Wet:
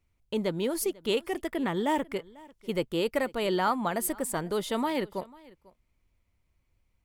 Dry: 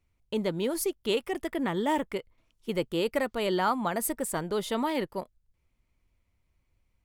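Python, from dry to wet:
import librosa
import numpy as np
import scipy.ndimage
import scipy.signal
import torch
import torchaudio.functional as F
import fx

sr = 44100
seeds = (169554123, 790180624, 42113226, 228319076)

y = x + 10.0 ** (-23.0 / 20.0) * np.pad(x, (int(495 * sr / 1000.0), 0))[:len(x)]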